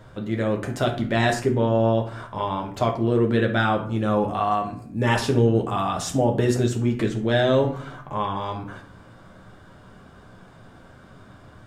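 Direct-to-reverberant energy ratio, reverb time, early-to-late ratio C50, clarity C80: 2.0 dB, 0.55 s, 10.0 dB, 14.0 dB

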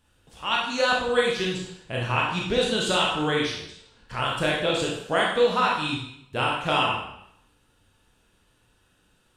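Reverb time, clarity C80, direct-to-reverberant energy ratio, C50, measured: 0.70 s, 5.5 dB, −3.0 dB, 2.0 dB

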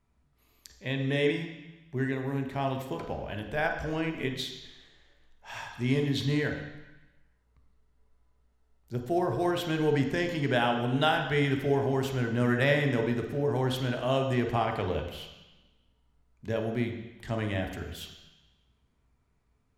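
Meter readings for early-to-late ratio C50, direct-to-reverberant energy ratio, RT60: 6.0 dB, 3.0 dB, 1.0 s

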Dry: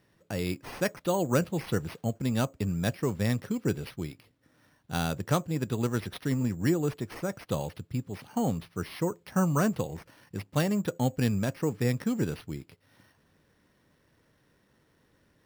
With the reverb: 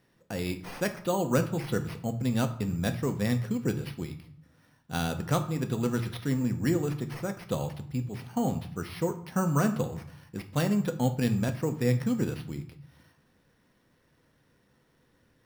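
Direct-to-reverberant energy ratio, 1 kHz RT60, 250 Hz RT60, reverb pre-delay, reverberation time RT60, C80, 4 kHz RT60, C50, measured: 7.0 dB, 0.70 s, 0.90 s, 4 ms, 0.65 s, 16.0 dB, 0.45 s, 12.5 dB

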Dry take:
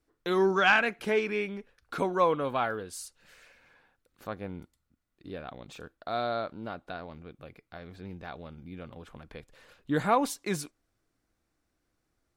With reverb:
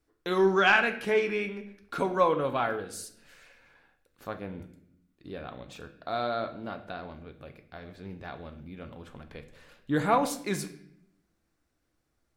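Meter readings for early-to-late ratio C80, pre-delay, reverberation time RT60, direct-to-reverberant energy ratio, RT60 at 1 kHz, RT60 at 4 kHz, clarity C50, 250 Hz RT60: 14.5 dB, 7 ms, 0.70 s, 7.0 dB, 0.60 s, 0.60 s, 12.0 dB, 1.1 s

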